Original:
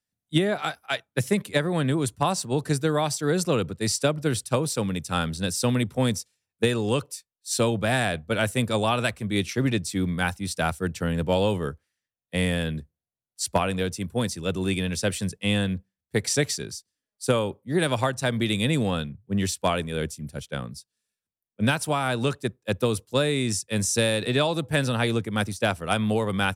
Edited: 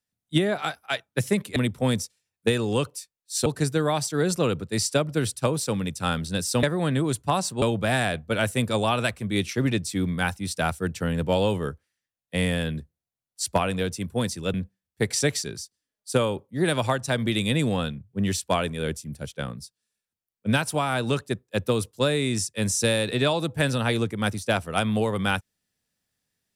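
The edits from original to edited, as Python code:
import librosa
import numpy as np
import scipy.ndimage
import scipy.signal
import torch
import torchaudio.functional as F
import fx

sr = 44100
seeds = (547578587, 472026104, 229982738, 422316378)

y = fx.edit(x, sr, fx.swap(start_s=1.56, length_s=0.99, other_s=5.72, other_length_s=1.9),
    fx.cut(start_s=14.54, length_s=1.14), tone=tone)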